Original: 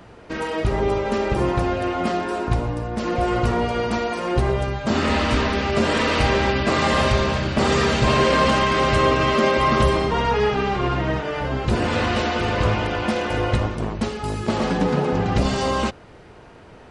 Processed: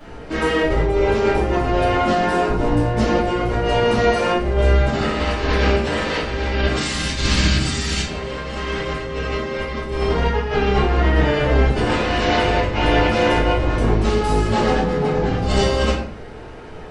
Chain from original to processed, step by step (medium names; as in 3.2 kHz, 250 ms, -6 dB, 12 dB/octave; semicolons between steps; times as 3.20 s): 6.76–8.03 s: FFT filter 300 Hz 0 dB, 460 Hz -13 dB, 7.1 kHz +12 dB; compressor with a negative ratio -23 dBFS, ratio -0.5; simulated room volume 76 m³, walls mixed, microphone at 2.5 m; trim -6.5 dB